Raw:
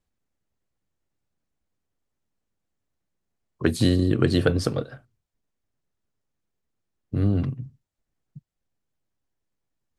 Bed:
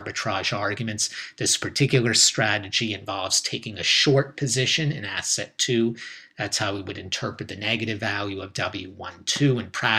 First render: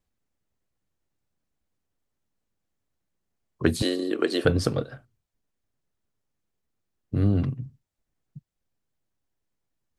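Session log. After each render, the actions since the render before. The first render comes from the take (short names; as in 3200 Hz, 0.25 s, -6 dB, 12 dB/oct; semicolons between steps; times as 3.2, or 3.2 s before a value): 3.82–4.45 HPF 320 Hz 24 dB/oct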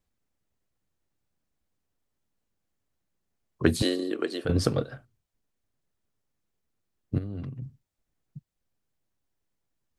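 3.84–4.49 fade out, to -11.5 dB; 7.18–7.62 compressor, threshold -33 dBFS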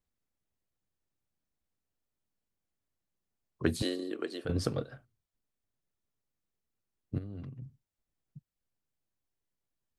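gain -7 dB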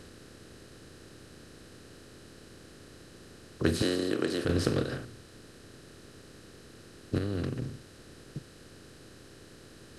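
per-bin compression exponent 0.4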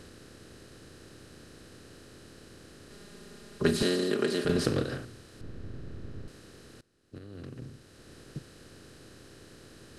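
2.9–4.66 comb 4.9 ms, depth 78%; 5.41–6.28 RIAA curve playback; 6.81–8.14 fade in quadratic, from -21 dB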